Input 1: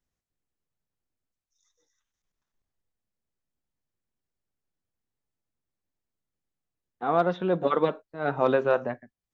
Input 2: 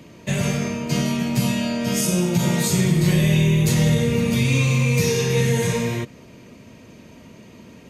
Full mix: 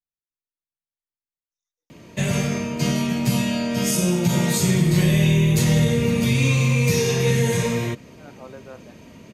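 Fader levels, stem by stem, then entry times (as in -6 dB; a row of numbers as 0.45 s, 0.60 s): -18.5 dB, 0.0 dB; 0.00 s, 1.90 s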